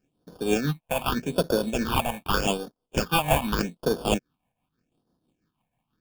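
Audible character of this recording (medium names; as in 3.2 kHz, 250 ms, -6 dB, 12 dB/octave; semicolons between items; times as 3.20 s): a buzz of ramps at a fixed pitch in blocks of 8 samples; tremolo triangle 6.1 Hz, depth 65%; aliases and images of a low sample rate 2 kHz, jitter 0%; phasing stages 6, 0.83 Hz, lowest notch 350–2400 Hz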